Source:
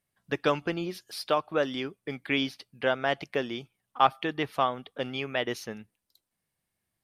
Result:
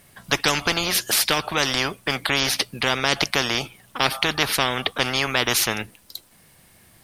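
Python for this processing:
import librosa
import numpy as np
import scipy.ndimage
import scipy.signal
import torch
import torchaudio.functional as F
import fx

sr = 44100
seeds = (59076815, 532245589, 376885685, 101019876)

y = fx.spectral_comp(x, sr, ratio=4.0)
y = y * librosa.db_to_amplitude(6.5)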